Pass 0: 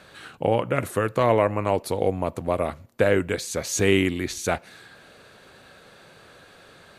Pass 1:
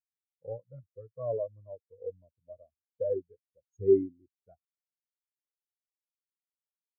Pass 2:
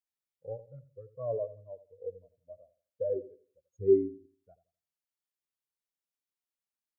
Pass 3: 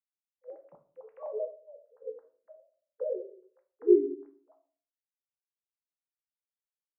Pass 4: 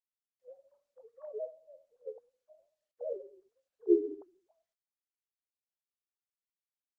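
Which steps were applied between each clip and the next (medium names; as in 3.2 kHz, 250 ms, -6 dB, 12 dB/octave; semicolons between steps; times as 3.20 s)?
bass shelf 160 Hz +5 dB; spectral contrast expander 4:1; trim -7 dB
filtered feedback delay 85 ms, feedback 31%, low-pass 890 Hz, level -13.5 dB; trim -1 dB
formants replaced by sine waves; on a send at -4.5 dB: reverberation RT60 0.45 s, pre-delay 6 ms
formants replaced by sine waves; trim -5 dB; Opus 32 kbps 48 kHz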